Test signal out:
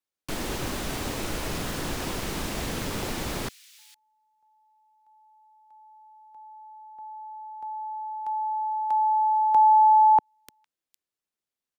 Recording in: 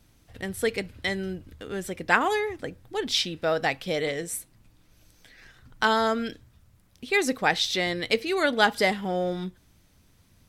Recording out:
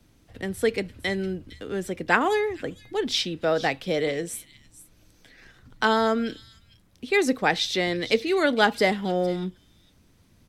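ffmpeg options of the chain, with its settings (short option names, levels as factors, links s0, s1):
-filter_complex "[0:a]highshelf=f=10000:g=-5.5,acrossover=split=200|460|2300[s0][s1][s2][s3];[s1]acontrast=37[s4];[s3]aecho=1:1:458:0.2[s5];[s0][s4][s2][s5]amix=inputs=4:normalize=0"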